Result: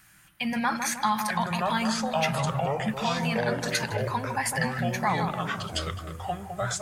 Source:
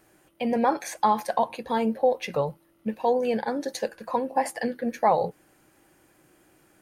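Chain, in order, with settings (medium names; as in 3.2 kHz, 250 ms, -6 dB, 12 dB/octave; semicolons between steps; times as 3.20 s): FFT filter 190 Hz 0 dB, 400 Hz -26 dB, 1.4 kHz +3 dB; filtered feedback delay 156 ms, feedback 54%, low-pass 990 Hz, level -5 dB; ever faster or slower copies 758 ms, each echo -5 st, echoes 2; in parallel at -3 dB: peak limiter -23.5 dBFS, peak gain reduction 10 dB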